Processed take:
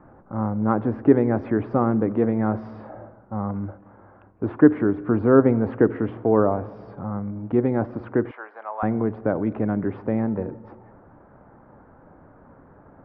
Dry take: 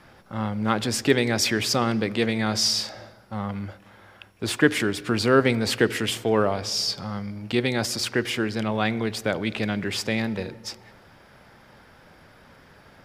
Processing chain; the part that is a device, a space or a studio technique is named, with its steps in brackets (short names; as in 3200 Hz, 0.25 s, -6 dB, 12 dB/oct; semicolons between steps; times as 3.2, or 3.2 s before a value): 8.31–8.83 HPF 740 Hz 24 dB/oct; under water (LPF 1200 Hz 24 dB/oct; bell 290 Hz +6 dB 0.33 oct); gain +2.5 dB